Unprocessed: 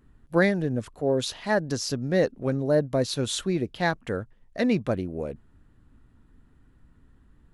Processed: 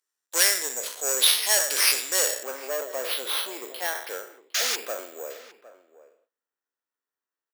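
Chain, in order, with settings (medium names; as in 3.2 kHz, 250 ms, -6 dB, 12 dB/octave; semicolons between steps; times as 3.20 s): spectral sustain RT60 0.45 s; careless resampling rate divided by 6×, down none, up hold; 4.54–4.76 s: painted sound noise 1.2–7.1 kHz -22 dBFS; saturation -22.5 dBFS, distortion -9 dB; peaking EQ 7.5 kHz +11 dB 2.5 oct, from 2.43 s -5.5 dB; spring tank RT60 1.8 s, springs 45 ms, chirp 45 ms, DRR 16.5 dB; gate -45 dBFS, range -24 dB; high-pass 420 Hz 24 dB/octave; tilt EQ +3 dB/octave; echo from a far wall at 130 m, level -16 dB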